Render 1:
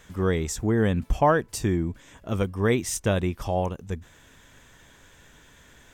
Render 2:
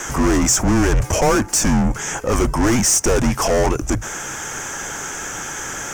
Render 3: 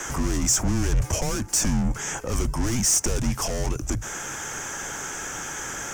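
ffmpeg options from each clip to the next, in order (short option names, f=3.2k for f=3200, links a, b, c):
-filter_complex "[0:a]asplit=2[a][b];[b]highpass=f=720:p=1,volume=37dB,asoftclip=type=tanh:threshold=-8.5dB[c];[a][c]amix=inputs=2:normalize=0,lowpass=f=1.8k:p=1,volume=-6dB,afreqshift=-130,highshelf=f=4.9k:t=q:w=3:g=8"
-filter_complex "[0:a]acrossover=split=200|3000[a][b][c];[b]acompressor=threshold=-26dB:ratio=6[d];[a][d][c]amix=inputs=3:normalize=0,volume=-4.5dB"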